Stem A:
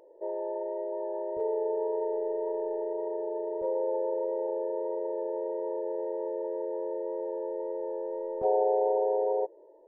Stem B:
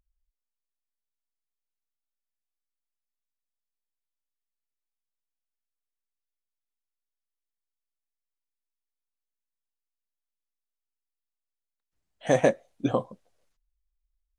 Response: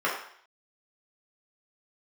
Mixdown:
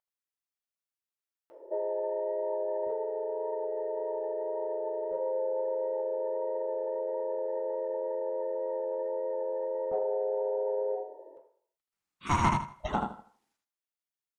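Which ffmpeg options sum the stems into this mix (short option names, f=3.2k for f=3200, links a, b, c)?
-filter_complex "[0:a]acompressor=threshold=-36dB:ratio=5,adelay=1500,volume=-7dB,asplit=2[a][b];[b]volume=-6.5dB[c];[1:a]highpass=430,aeval=exprs='val(0)*sin(2*PI*400*n/s+400*0.3/0.26*sin(2*PI*0.26*n/s))':c=same,volume=-6dB,asplit=3[d][e][f];[e]volume=-19.5dB[g];[f]volume=-3.5dB[h];[2:a]atrim=start_sample=2205[i];[c][g]amix=inputs=2:normalize=0[j];[j][i]afir=irnorm=-1:irlink=0[k];[h]aecho=0:1:79|158|237|316:1|0.23|0.0529|0.0122[l];[a][d][k][l]amix=inputs=4:normalize=0,acontrast=49,asoftclip=type=tanh:threshold=-13dB"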